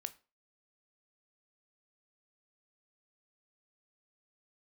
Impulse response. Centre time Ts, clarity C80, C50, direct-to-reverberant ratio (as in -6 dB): 4 ms, 24.0 dB, 18.5 dB, 11.0 dB